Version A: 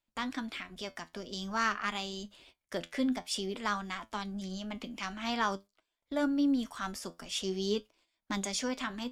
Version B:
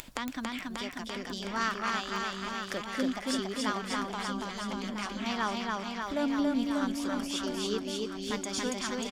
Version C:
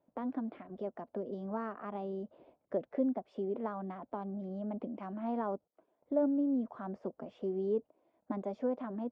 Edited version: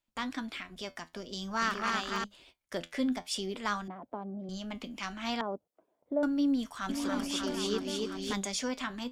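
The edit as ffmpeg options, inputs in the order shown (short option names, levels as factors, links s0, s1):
-filter_complex "[1:a]asplit=2[s0][s1];[2:a]asplit=2[s2][s3];[0:a]asplit=5[s4][s5][s6][s7][s8];[s4]atrim=end=1.622[s9];[s0]atrim=start=1.618:end=2.242[s10];[s5]atrim=start=2.238:end=3.882[s11];[s2]atrim=start=3.878:end=4.492[s12];[s6]atrim=start=4.488:end=5.412[s13];[s3]atrim=start=5.408:end=6.232[s14];[s7]atrim=start=6.228:end=6.892[s15];[s1]atrim=start=6.888:end=8.332[s16];[s8]atrim=start=8.328[s17];[s9][s10]acrossfade=d=0.004:c1=hsin:c2=hsin[s18];[s18][s11]acrossfade=d=0.004:c1=hsin:c2=hsin[s19];[s19][s12]acrossfade=d=0.004:c1=hsin:c2=hsin[s20];[s20][s13]acrossfade=d=0.004:c1=hsin:c2=hsin[s21];[s21][s14]acrossfade=d=0.004:c1=hsin:c2=hsin[s22];[s22][s15]acrossfade=d=0.004:c1=hsin:c2=hsin[s23];[s23][s16]acrossfade=d=0.004:c1=hsin:c2=hsin[s24];[s24][s17]acrossfade=d=0.004:c1=hsin:c2=hsin"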